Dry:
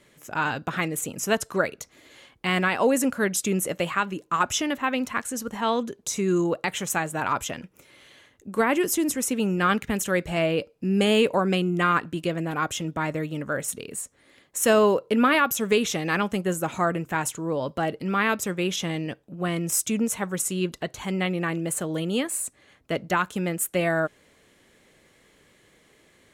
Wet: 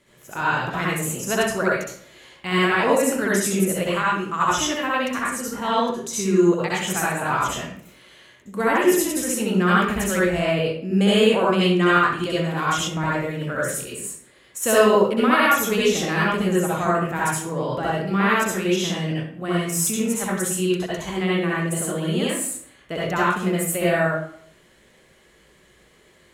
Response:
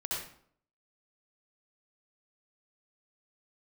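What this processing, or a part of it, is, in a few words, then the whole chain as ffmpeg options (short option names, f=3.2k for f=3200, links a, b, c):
bathroom: -filter_complex "[1:a]atrim=start_sample=2205[a];[0:a][a]afir=irnorm=-1:irlink=0,asettb=1/sr,asplit=3[b][c][d];[b]atrim=end=11.614[e];[c]atrim=start=11.61:end=12.88,asetpts=PTS-STARTPTS,afade=t=in:d=0.004:c=qsin,afade=t=out:st=1.266:d=0.004:c=qsin,equalizer=f=4.4k:t=o:w=1.7:g=5[f];[d]atrim=start=12.876[g];[e][f]acrossfade=d=0.004:c1=hsin:c2=qsin[h];[h][g]acrossfade=d=0.004:c1=qsin:c2=hsin"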